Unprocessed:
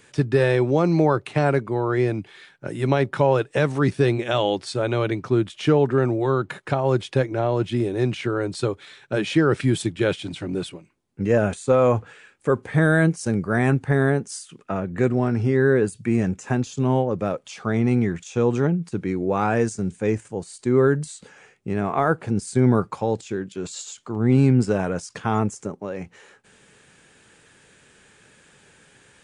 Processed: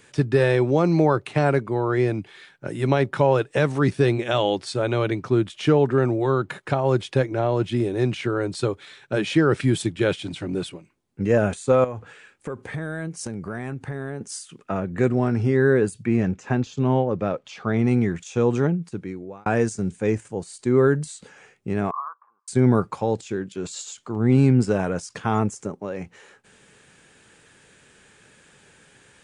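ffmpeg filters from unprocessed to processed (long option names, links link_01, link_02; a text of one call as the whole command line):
ffmpeg -i in.wav -filter_complex "[0:a]asettb=1/sr,asplit=3[link_01][link_02][link_03];[link_01]atrim=end=11.844[link_04];[link_02]atrim=start=11.84:end=14.21,asetpts=PTS-STARTPTS,afade=type=in:duration=0.004:curve=qsin,afade=type=out:start_time=2.366:duration=0.004:curve=qsin,acompressor=threshold=-27dB:ratio=6:attack=3.2:release=140:knee=1:detection=peak[link_05];[link_03]atrim=start=14.206[link_06];[link_04][link_05]acrossfade=duration=0.004:curve1=hsin:curve2=qsin[link_07];[link_07][link_06]acrossfade=duration=0.004:curve1=qsin:curve2=hsin,asettb=1/sr,asplit=3[link_08][link_09][link_10];[link_08]atrim=end=16.034[link_11];[link_09]atrim=start=16.03:end=17.79,asetpts=PTS-STARTPTS,afade=type=in:duration=0.004:curve=qsin,afade=type=out:start_time=1.756:duration=0.004:curve=qsin,lowpass=4700[link_12];[link_10]atrim=start=17.786[link_13];[link_11][link_12]acrossfade=duration=0.004:curve1=hsin:curve2=qsin[link_14];[link_14][link_13]acrossfade=duration=0.004:curve1=qsin:curve2=hsin,asettb=1/sr,asplit=3[link_15][link_16][link_17];[link_15]atrim=end=21.914[link_18];[link_16]atrim=start=21.91:end=22.48,asetpts=PTS-STARTPTS,afade=type=in:duration=0.004:curve=qsin,afade=type=out:start_time=0.566:duration=0.004:curve=qsin,asuperpass=centerf=1100:order=4:qfactor=6.3[link_19];[link_17]atrim=start=22.476[link_20];[link_18][link_19]acrossfade=duration=0.004:curve1=hsin:curve2=qsin[link_21];[link_21][link_20]acrossfade=duration=0.004:curve1=qsin:curve2=hsin,asplit=2[link_22][link_23];[link_22]atrim=end=19.46,asetpts=PTS-STARTPTS,afade=type=out:start_time=18.62:duration=0.84[link_24];[link_23]atrim=start=19.46,asetpts=PTS-STARTPTS,afade=type=in:duration=0.004:curve=hsin[link_25];[link_24][link_25]concat=n=2:v=0:a=1" out.wav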